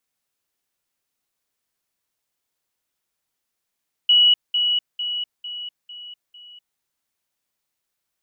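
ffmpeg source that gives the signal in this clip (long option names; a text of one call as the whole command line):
ffmpeg -f lavfi -i "aevalsrc='pow(10,(-11-6*floor(t/0.45))/20)*sin(2*PI*2930*t)*clip(min(mod(t,0.45),0.25-mod(t,0.45))/0.005,0,1)':duration=2.7:sample_rate=44100" out.wav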